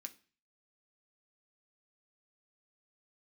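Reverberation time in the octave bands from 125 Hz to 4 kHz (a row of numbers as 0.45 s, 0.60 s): 0.55 s, 0.45 s, 0.40 s, 0.40 s, 0.45 s, 0.40 s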